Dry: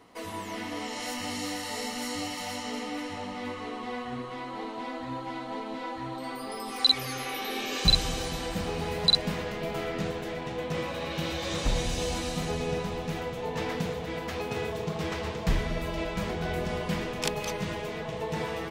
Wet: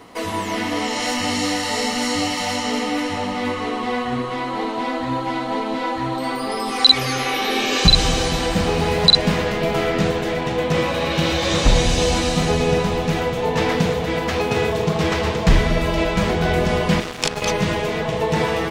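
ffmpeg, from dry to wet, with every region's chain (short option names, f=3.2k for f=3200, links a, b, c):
-filter_complex "[0:a]asettb=1/sr,asplit=3[a][b][c];[a]atrim=end=17.004[d];[b]atrim=start=17:end=17.42,asetpts=PTS-STARTPTS,afade=t=in:d=0.004:c=qsin,afade=t=out:st=0.416:d=0.004:c=qsin,highshelf=f=3.7k:g=5.5,aeval=exprs='sgn(val(0))*max(abs(val(0))-0.0211,0)':c=same[e];[c]atrim=start=17.416[f];[d][e]acrossfade=d=0.004:c1=hsin:c2=qsin[g];[g][f]acrossfade=d=0.004:c1=qsin:c2=hsin,acrossover=split=9000[h][i];[i]acompressor=threshold=-60dB:ratio=4:attack=1:release=60[j];[h][j]amix=inputs=2:normalize=0,alimiter=level_in=13.5dB:limit=-1dB:release=50:level=0:latency=1,volume=-1dB"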